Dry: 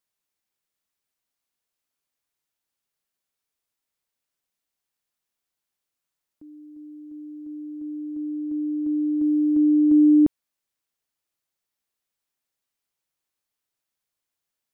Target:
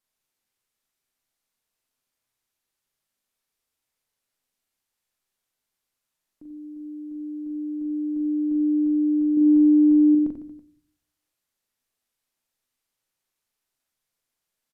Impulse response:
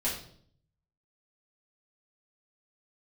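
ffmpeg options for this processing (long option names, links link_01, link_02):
-filter_complex "[0:a]alimiter=limit=-23dB:level=0:latency=1:release=28,asettb=1/sr,asplit=3[link_01][link_02][link_03];[link_01]atrim=end=9.374[link_04];[link_02]atrim=start=9.37:end=10.15,asetpts=PTS-STARTPTS,afade=type=in:duration=0.004:curve=qsin,afade=type=out:start_time=0.776:duration=0.004:curve=qsin,acontrast=43[link_05];[link_03]atrim=start=10.146[link_06];[link_04][link_05]acrossfade=duration=0.004:curve1=hsin:curve2=qsin[link_07];[link_07][link_06]acrossfade=duration=0.004:curve1=qsin:curve2=hsin,aecho=1:1:40|90|152.5|230.6|328.3:0.631|0.398|0.251|0.158|0.1,asplit=2[link_08][link_09];[1:a]atrim=start_sample=2205,lowshelf=frequency=150:gain=9[link_10];[link_09][link_10]afir=irnorm=-1:irlink=0,volume=-18dB[link_11];[link_08][link_11]amix=inputs=2:normalize=0,aresample=32000,aresample=44100"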